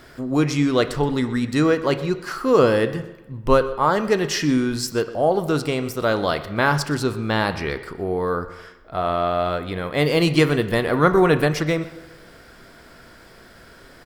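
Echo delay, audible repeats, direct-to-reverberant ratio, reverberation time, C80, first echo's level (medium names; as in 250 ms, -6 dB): 124 ms, 1, 10.5 dB, 1.1 s, 14.0 dB, -18.5 dB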